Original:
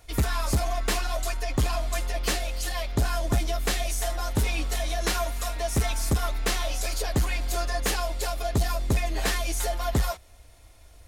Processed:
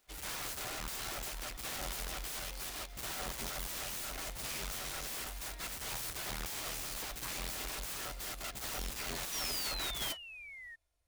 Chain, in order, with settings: low shelf 420 Hz -5 dB; wrapped overs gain 28 dB; painted sound fall, 9.32–10.76, 1800–5900 Hz -36 dBFS; reverse echo 0.58 s -14 dB; upward expander 2.5:1, over -45 dBFS; gain -5 dB

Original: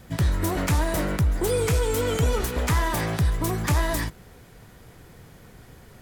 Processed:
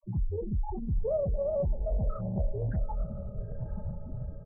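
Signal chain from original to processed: limiter -23.5 dBFS, peak gain reduction 8.5 dB; AGC gain up to 9 dB; companded quantiser 2-bit; frequency shift -26 Hz; loudest bins only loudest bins 2; speed mistake 33 rpm record played at 45 rpm; doubler 25 ms -10.5 dB; diffused feedback echo 0.934 s, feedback 52%, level -12 dB; Doppler distortion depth 0.35 ms

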